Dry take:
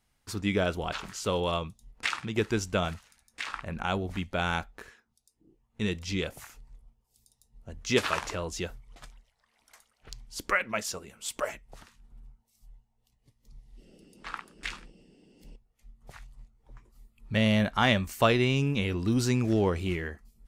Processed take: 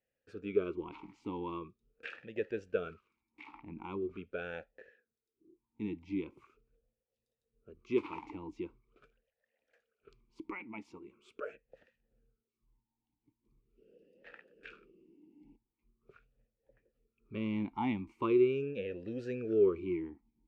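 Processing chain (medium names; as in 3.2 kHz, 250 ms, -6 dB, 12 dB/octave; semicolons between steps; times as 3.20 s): tilt EQ -2.5 dB/octave; talking filter e-u 0.42 Hz; trim +1 dB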